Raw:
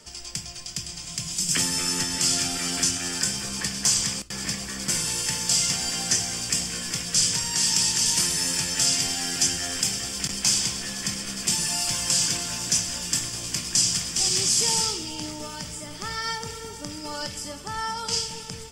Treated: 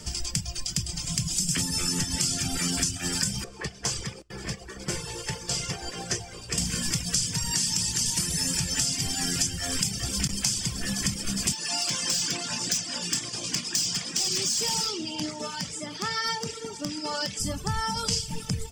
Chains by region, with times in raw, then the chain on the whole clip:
3.44–6.58 s: low-pass 1.7 kHz 6 dB/octave + resonant low shelf 310 Hz -6.5 dB, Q 3 + upward expansion, over -51 dBFS
11.52–17.40 s: band-pass 270–6400 Hz + overload inside the chain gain 21 dB
whole clip: reverb removal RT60 1.1 s; tone controls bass +12 dB, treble +3 dB; compression, threshold -28 dBFS; trim +4 dB

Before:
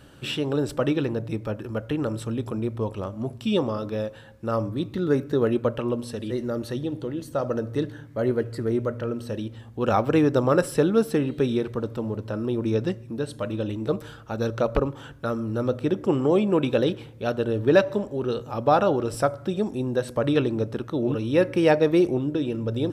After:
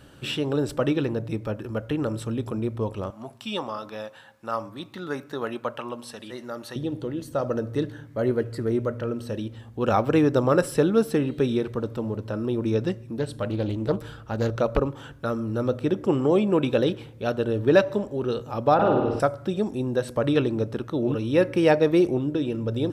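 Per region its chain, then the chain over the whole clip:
3.10–6.76 s: high-pass 160 Hz + resonant low shelf 600 Hz -8 dB, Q 1.5
13.19–14.56 s: bass shelf 130 Hz +6 dB + band-stop 6.4 kHz + loudspeaker Doppler distortion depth 0.28 ms
18.74–19.20 s: distance through air 290 m + flutter echo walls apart 9 m, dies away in 1 s
whole clip: none

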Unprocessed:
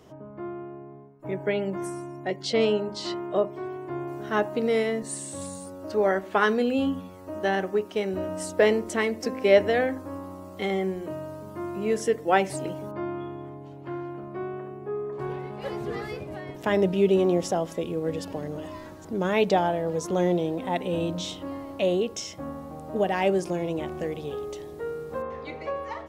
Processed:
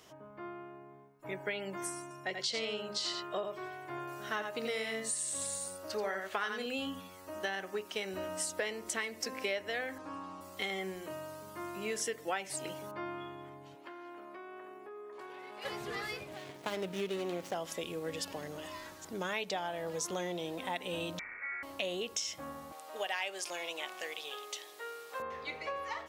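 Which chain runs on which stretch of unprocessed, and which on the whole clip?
2.02–6.66 s: high-pass 46 Hz + delay 85 ms -6.5 dB
9.98–10.41 s: distance through air 110 m + comb 6.4 ms, depth 72%
13.75–15.65 s: high-pass 240 Hz 24 dB/octave + compression 5:1, threshold -36 dBFS
16.28–17.54 s: median filter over 25 samples + high-pass 91 Hz
21.19–21.63 s: one-bit delta coder 32 kbps, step -50.5 dBFS + tilt EQ +4.5 dB/octave + frequency inversion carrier 2.5 kHz
22.72–25.20 s: high-pass 590 Hz + peaking EQ 3.2 kHz +4 dB 1.5 oct
whole clip: tilt shelf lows -9 dB, about 910 Hz; compression 6:1, threshold -28 dBFS; trim -4.5 dB

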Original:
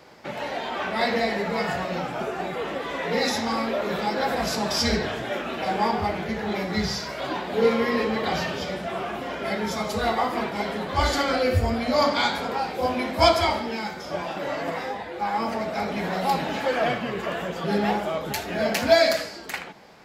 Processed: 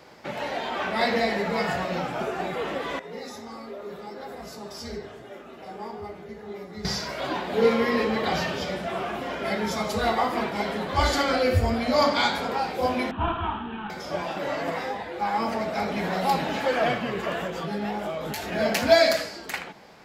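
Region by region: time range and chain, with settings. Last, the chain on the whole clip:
2.99–6.85 s: peaking EQ 2.8 kHz -6 dB 2 oct + feedback comb 410 Hz, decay 0.2 s, harmonics odd, mix 80%
13.11–13.90 s: CVSD coder 16 kbps + static phaser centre 2.1 kHz, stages 6
17.47–18.52 s: compression 4:1, threshold -29 dBFS + doubling 19 ms -5.5 dB
whole clip: none

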